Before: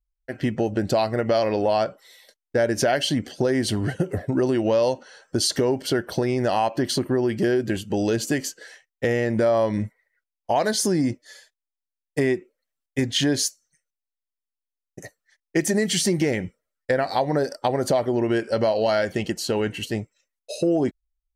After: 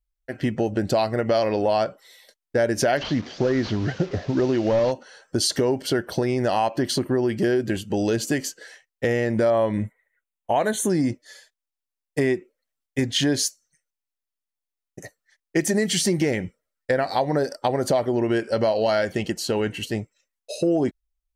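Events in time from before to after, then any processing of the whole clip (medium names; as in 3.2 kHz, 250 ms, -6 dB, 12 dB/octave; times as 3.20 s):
2.97–4.92 s: one-bit delta coder 32 kbps, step -35 dBFS
9.50–10.90 s: Butterworth band-stop 5 kHz, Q 1.8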